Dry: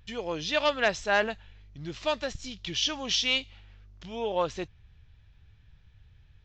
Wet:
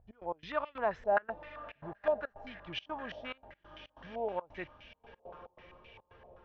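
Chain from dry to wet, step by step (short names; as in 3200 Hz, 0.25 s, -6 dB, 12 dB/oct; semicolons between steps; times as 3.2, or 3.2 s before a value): diffused feedback echo 0.986 s, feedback 50%, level -15 dB; step gate "x.x.xx.xxxx.xxx" 140 bpm -24 dB; stepped low-pass 7.7 Hz 700–2400 Hz; gain -9 dB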